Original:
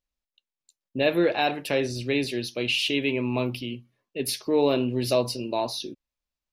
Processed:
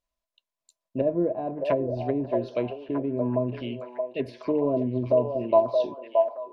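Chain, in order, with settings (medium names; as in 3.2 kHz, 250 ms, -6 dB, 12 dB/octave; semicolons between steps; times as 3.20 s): low-pass that closes with the level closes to 350 Hz, closed at -21.5 dBFS; small resonant body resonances 650/1000 Hz, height 18 dB, ringing for 75 ms; on a send: repeats whose band climbs or falls 623 ms, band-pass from 680 Hz, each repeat 0.7 oct, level -2 dB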